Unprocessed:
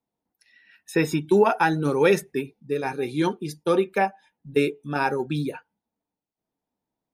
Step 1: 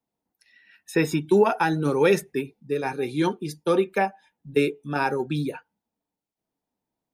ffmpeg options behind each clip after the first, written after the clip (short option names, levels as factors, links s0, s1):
-filter_complex "[0:a]acrossover=split=470|3000[s0][s1][s2];[s1]acompressor=threshold=0.112:ratio=6[s3];[s0][s3][s2]amix=inputs=3:normalize=0"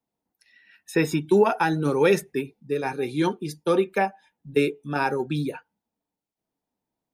-af anull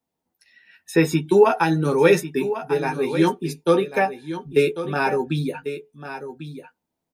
-filter_complex "[0:a]asplit=2[s0][s1];[s1]adelay=12,volume=0.562[s2];[s0][s2]amix=inputs=2:normalize=0,aecho=1:1:1095:0.266,volume=1.26"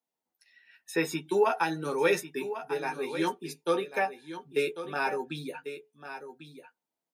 -af "highpass=f=560:p=1,volume=0.501"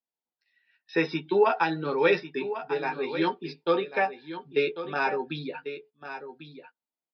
-af "agate=range=0.251:threshold=0.002:ratio=16:detection=peak,aresample=11025,aresample=44100,volume=1.41"